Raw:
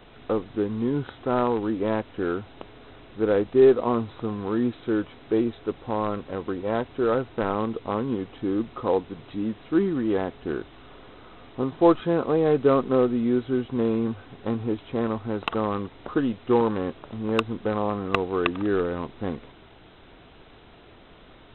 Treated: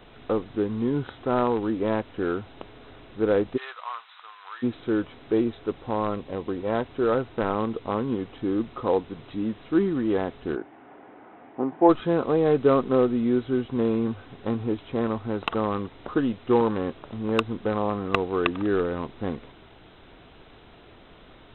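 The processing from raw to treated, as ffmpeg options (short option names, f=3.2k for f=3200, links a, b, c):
-filter_complex "[0:a]asplit=3[a][b][c];[a]afade=t=out:st=3.56:d=0.02[d];[b]highpass=f=1.1k:w=0.5412,highpass=f=1.1k:w=1.3066,afade=t=in:st=3.56:d=0.02,afade=t=out:st=4.62:d=0.02[e];[c]afade=t=in:st=4.62:d=0.02[f];[d][e][f]amix=inputs=3:normalize=0,asettb=1/sr,asplit=3[g][h][i];[g]atrim=end=6.144[j];[h]atrim=start=6.14:end=6.54,asetpts=PTS-STARTPTS,afade=t=in:d=0.004:c=qsin,afade=t=out:st=0.396:d=0.004:c=qsin,equalizer=f=1.4k:w=3.2:g=-7.5[k];[i]atrim=start=6.536[l];[j][k]acrossfade=d=0.004:c1=hsin:c2=qsin[m];[m][l]acrossfade=d=0.004:c1=qsin:c2=hsin,asplit=3[n][o][p];[n]afade=t=out:st=10.55:d=0.02[q];[o]highpass=220,equalizer=f=290:t=q:w=4:g=4,equalizer=f=480:t=q:w=4:g=-3,equalizer=f=790:t=q:w=4:g=7,equalizer=f=1.2k:t=q:w=4:g=-6,lowpass=f=2.1k:w=0.5412,lowpass=f=2.1k:w=1.3066,afade=t=in:st=10.55:d=0.02,afade=t=out:st=11.88:d=0.02[r];[p]afade=t=in:st=11.88:d=0.02[s];[q][r][s]amix=inputs=3:normalize=0"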